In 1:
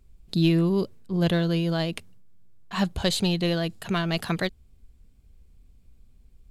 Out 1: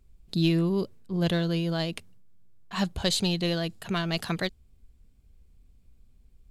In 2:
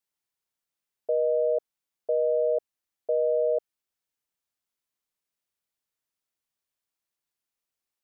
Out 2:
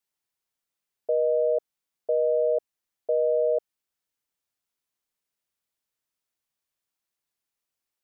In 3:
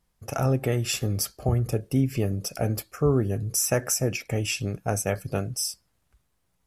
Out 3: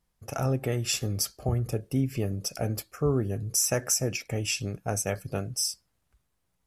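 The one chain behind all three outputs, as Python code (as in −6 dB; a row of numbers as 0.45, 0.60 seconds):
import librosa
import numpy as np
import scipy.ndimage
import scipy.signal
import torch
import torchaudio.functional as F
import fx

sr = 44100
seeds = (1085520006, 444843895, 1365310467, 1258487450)

y = fx.dynamic_eq(x, sr, hz=5800.0, q=0.84, threshold_db=-40.0, ratio=4.0, max_db=5)
y = y * 10.0 ** (-30 / 20.0) / np.sqrt(np.mean(np.square(y)))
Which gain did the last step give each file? −3.0, +1.0, −3.5 decibels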